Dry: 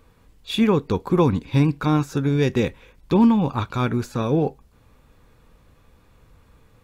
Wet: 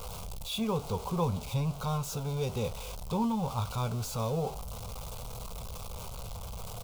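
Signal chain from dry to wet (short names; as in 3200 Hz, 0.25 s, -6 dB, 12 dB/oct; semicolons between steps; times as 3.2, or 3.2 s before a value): zero-crossing step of -24.5 dBFS; fixed phaser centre 740 Hz, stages 4; doubler 18 ms -12 dB; gain -8.5 dB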